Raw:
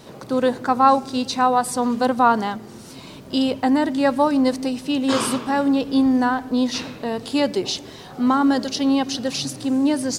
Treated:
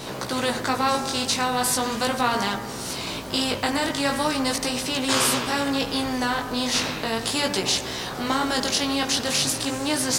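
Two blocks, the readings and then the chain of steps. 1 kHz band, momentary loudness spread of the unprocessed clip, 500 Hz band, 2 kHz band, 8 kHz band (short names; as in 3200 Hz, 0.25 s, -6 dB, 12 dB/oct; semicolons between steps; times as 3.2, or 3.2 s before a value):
-5.5 dB, 10 LU, -4.5 dB, +3.0 dB, +6.5 dB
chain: chorus 0.39 Hz, delay 15.5 ms, depth 5.8 ms; de-hum 58.33 Hz, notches 33; spectral compressor 2:1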